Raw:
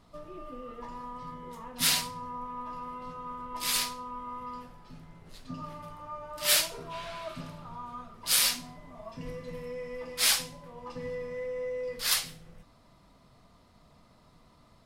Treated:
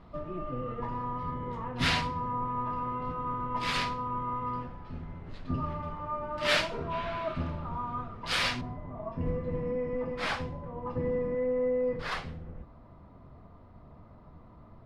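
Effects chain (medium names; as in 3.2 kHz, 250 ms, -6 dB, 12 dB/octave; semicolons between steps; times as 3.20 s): octave divider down 1 oct, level +1 dB; low-pass 2.3 kHz 12 dB/octave, from 8.61 s 1.3 kHz; trim +6 dB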